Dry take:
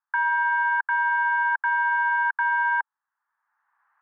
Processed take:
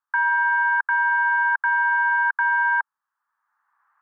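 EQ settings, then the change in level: peaking EQ 1.2 kHz +6 dB 0.54 oct; dynamic bell 1.6 kHz, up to +3 dB, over -31 dBFS, Q 2.4; -1.5 dB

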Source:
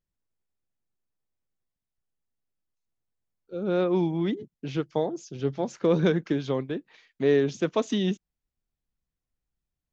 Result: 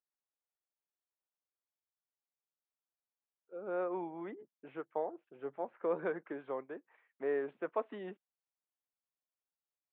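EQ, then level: Gaussian low-pass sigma 5.2 samples; high-pass 700 Hz 12 dB/octave; -2.5 dB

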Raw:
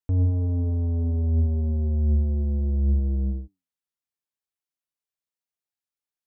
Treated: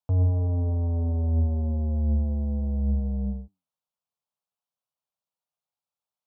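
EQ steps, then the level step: high-pass 130 Hz 12 dB/octave; tone controls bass +1 dB, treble -12 dB; static phaser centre 790 Hz, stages 4; +7.0 dB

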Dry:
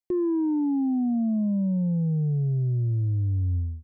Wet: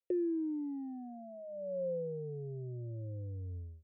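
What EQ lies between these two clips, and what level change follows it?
vowel filter e; bass shelf 150 Hz +11.5 dB; static phaser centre 500 Hz, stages 4; +8.5 dB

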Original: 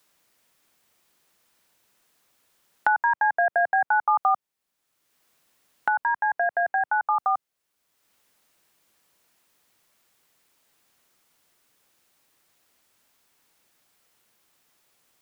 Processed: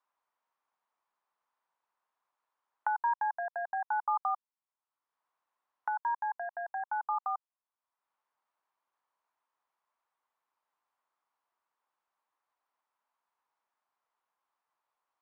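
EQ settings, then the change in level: band-pass filter 990 Hz, Q 3.3; -5.5 dB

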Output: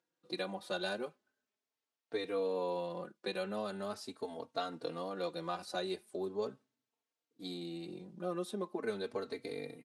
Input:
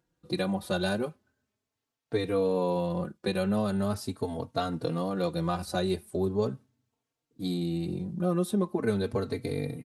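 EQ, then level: high-pass 400 Hz 12 dB/octave; distance through air 57 m; peaking EQ 810 Hz -4 dB 2.8 oct; -2.5 dB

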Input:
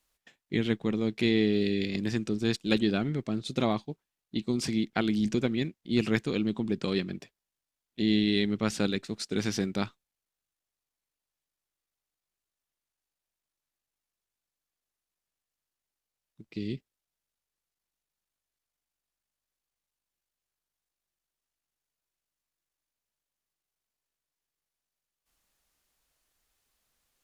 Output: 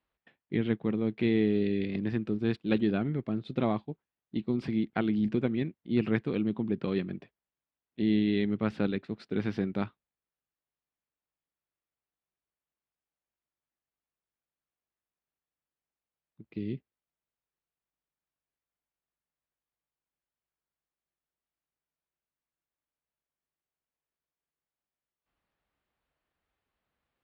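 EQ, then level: high-pass 55 Hz; distance through air 440 m; 0.0 dB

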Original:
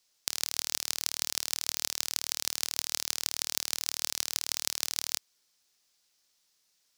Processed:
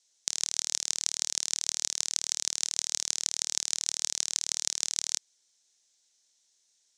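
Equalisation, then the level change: tone controls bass -4 dB, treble +13 dB; cabinet simulation 160–7200 Hz, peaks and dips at 1.2 kHz -8 dB, 2.7 kHz -4 dB, 4.8 kHz -8 dB; -2.5 dB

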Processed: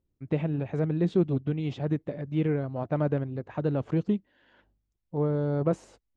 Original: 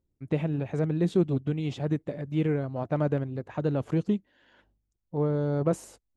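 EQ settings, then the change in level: distance through air 110 m; 0.0 dB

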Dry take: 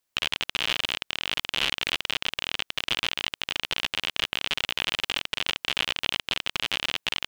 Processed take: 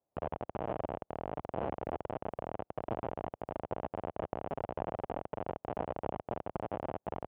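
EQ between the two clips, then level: high-pass 72 Hz 12 dB/octave; four-pole ladder low-pass 820 Hz, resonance 45%; bass shelf 110 Hz +6.5 dB; +9.0 dB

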